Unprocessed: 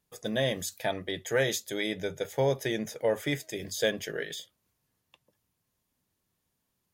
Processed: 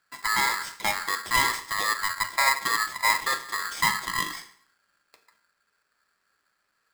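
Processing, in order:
Chebyshev low-pass filter 7,300 Hz, order 8
high-shelf EQ 2,100 Hz −12 dB
in parallel at +2 dB: downward compressor, threshold −38 dBFS, peak gain reduction 14 dB
on the sum: dense smooth reverb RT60 0.62 s, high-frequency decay 0.85×, DRR 6.5 dB
ring modulator with a square carrier 1,500 Hz
level +2.5 dB

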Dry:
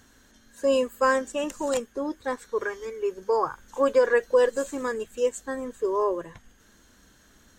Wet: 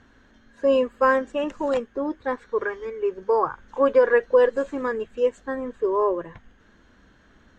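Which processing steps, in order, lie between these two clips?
low-pass filter 2,600 Hz 12 dB per octave
level +3 dB

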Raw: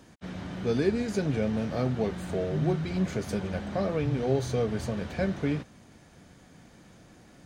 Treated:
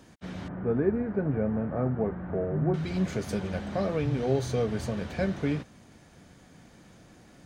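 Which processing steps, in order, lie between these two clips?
0:00.48–0:02.74: low-pass filter 1,600 Hz 24 dB per octave

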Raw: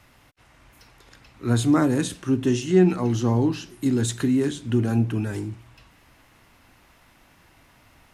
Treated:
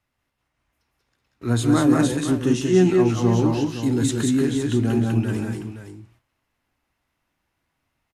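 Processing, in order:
noise gate −45 dBFS, range −22 dB
multi-tap delay 139/183/197/515 ms −16.5/−3.5/−6.5/−10 dB

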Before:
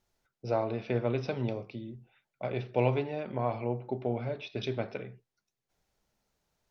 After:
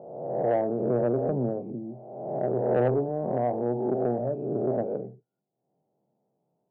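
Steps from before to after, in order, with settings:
peak hold with a rise ahead of every peak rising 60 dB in 1.21 s
elliptic band-pass filter 140–760 Hz, stop band 60 dB
soft clipping −20.5 dBFS, distortion −18 dB
level +5.5 dB

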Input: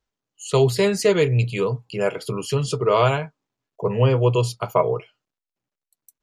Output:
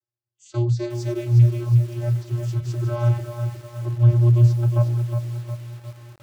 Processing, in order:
channel vocoder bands 16, square 119 Hz
high shelf with overshoot 3,900 Hz +7 dB, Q 1.5
feedback echo at a low word length 361 ms, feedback 55%, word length 7 bits, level −7 dB

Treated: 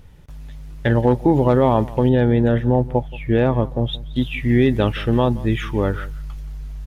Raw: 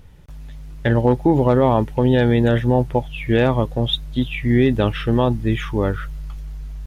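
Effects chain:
0:02.09–0:04.16: high-shelf EQ 2,000 Hz −10.5 dB
slap from a distant wall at 30 metres, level −20 dB

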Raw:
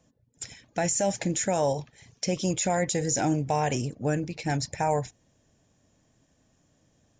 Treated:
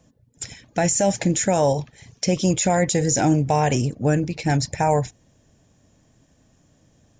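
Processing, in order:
low-shelf EQ 260 Hz +4 dB
level +5.5 dB

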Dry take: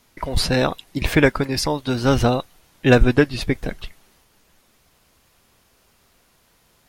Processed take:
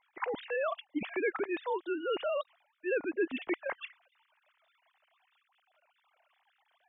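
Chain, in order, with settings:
three sine waves on the formant tracks
reversed playback
downward compressor 4 to 1, threshold −27 dBFS, peak gain reduction 17.5 dB
reversed playback
level −4.5 dB

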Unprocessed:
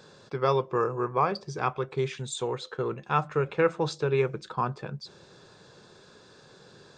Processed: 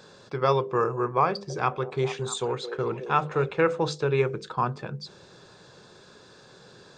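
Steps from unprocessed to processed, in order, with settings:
mains-hum notches 50/100/150/200/250/300/350/400/450/500 Hz
0:01.28–0:03.46: echo through a band-pass that steps 217 ms, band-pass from 430 Hz, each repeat 0.7 octaves, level −8 dB
level +2.5 dB

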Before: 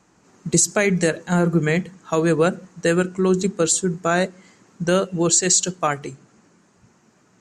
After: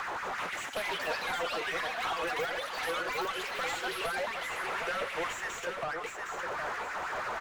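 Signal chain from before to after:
running median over 9 samples
parametric band 250 Hz −12.5 dB 1.8 octaves
in parallel at −2.5 dB: upward compression, threshold −21 dBFS
on the sum: brickwall limiter −14 dBFS, peak gain reduction 10 dB
downward compressor, threshold −36 dBFS, peak gain reduction 16.5 dB
auto-filter high-pass sine 6.1 Hz 460–1,800 Hz
mid-hump overdrive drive 30 dB, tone 1,600 Hz, clips at −17.5 dBFS
on a send: repeating echo 762 ms, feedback 32%, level −6 dB
on the sum: delay with pitch and tempo change per echo 382 ms, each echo +7 semitones, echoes 2
level −8.5 dB

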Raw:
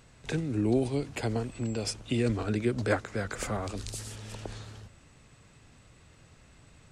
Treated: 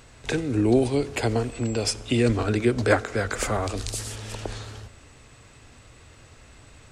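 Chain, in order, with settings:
parametric band 170 Hz −10 dB 0.57 octaves
convolution reverb RT60 1.7 s, pre-delay 3 ms, DRR 19 dB
level +8 dB

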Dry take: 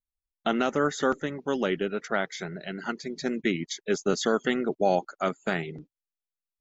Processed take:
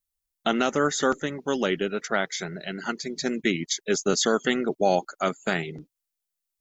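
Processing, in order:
high-shelf EQ 4,500 Hz +11 dB
level +1.5 dB

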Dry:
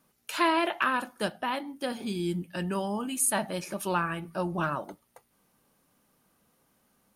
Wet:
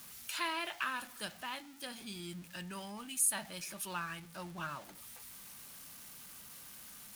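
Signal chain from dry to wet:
converter with a step at zero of −39.5 dBFS
guitar amp tone stack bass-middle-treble 5-5-5
level +1.5 dB

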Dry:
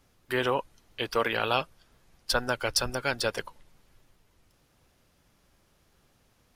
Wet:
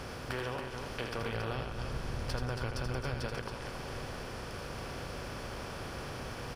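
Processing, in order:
compressor on every frequency bin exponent 0.4
0:01.18–0:03.27: low-shelf EQ 180 Hz +11 dB
downward compressor 6 to 1, threshold −29 dBFS, peak gain reduction 13.5 dB
high-pass filter 65 Hz 6 dB per octave
bass and treble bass +11 dB, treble −7 dB
loudspeakers that aren't time-aligned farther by 28 metres −6 dB, 95 metres −6 dB
level −7 dB

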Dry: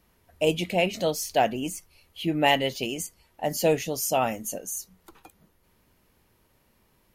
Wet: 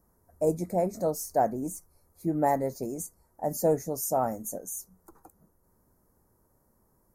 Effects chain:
Butterworth band-reject 3,000 Hz, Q 0.53
level −2 dB

